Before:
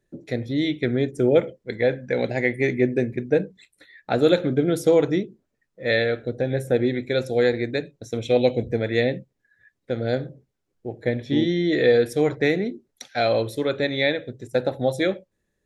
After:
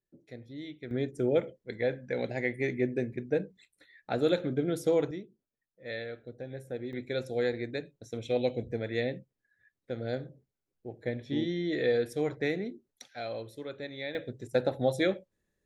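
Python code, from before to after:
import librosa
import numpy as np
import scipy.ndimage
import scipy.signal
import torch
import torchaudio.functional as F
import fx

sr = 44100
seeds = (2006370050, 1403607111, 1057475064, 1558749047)

y = fx.gain(x, sr, db=fx.steps((0.0, -19.0), (0.91, -9.0), (5.11, -17.0), (6.93, -10.0), (13.15, -16.5), (14.15, -5.0)))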